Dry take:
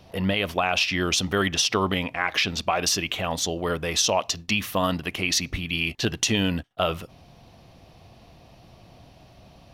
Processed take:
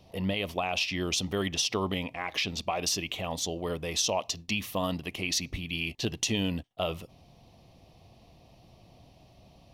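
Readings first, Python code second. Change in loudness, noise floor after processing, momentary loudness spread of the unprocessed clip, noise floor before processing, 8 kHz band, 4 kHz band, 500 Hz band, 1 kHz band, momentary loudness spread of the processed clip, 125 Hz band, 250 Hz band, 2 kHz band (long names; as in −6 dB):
−6.5 dB, −58 dBFS, 5 LU, −52 dBFS, −5.5 dB, −6.0 dB, −6.0 dB, −8.0 dB, 5 LU, −5.5 dB, −5.5 dB, −8.5 dB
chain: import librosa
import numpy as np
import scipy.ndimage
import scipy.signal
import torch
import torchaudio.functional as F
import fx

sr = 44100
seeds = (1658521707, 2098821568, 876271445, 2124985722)

y = fx.peak_eq(x, sr, hz=1500.0, db=-11.0, octaves=0.57)
y = y * 10.0 ** (-5.5 / 20.0)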